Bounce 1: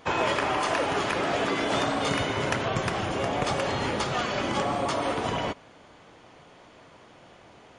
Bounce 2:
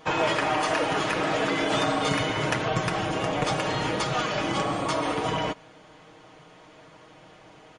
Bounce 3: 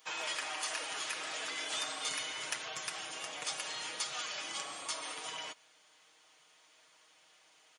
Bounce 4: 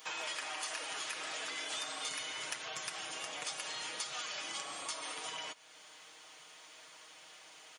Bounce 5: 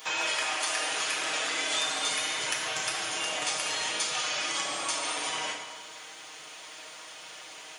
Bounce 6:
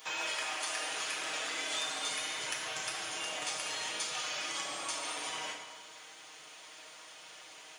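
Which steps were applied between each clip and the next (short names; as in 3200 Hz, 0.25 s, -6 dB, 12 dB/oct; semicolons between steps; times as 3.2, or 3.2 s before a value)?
comb 6.4 ms, depth 58%
differentiator
compressor 2:1, threshold -56 dBFS, peak gain reduction 13 dB; gain +9 dB
plate-style reverb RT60 1.4 s, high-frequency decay 0.85×, DRR 0 dB; gain +7.5 dB
modulation noise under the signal 31 dB; gain -6.5 dB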